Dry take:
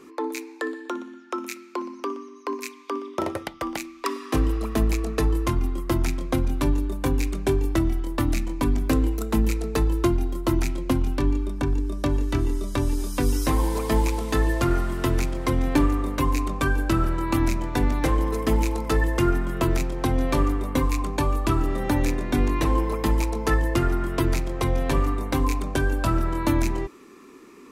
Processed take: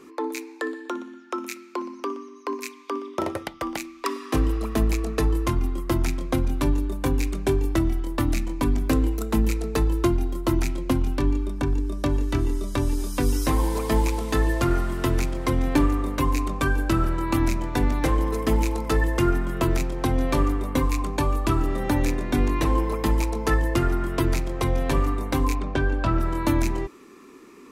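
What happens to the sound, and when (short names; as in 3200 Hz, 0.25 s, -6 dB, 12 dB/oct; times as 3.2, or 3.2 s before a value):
25.55–26.2 LPF 4000 Hz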